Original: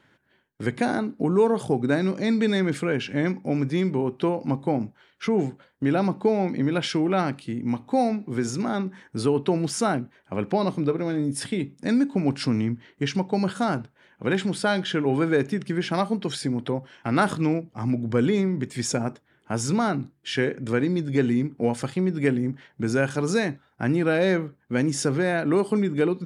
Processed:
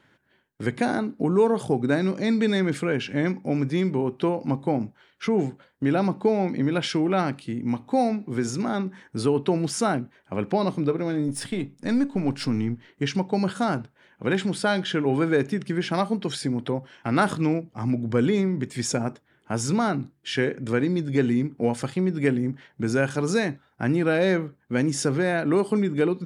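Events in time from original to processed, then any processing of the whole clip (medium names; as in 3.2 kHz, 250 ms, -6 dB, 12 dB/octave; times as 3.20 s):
11.28–12.89 s: partial rectifier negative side -3 dB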